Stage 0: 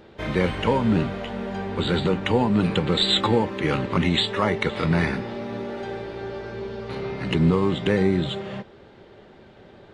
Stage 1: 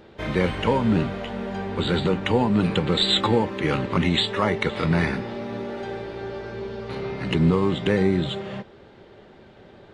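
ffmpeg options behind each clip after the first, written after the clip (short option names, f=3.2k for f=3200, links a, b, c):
-af anull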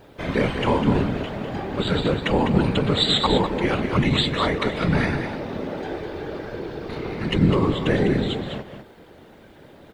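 -filter_complex "[0:a]acrusher=bits=10:mix=0:aa=0.000001,afftfilt=real='hypot(re,im)*cos(2*PI*random(0))':imag='hypot(re,im)*sin(2*PI*random(1))':win_size=512:overlap=0.75,asplit=2[a][b];[b]aecho=0:1:202:0.398[c];[a][c]amix=inputs=2:normalize=0,volume=6.5dB"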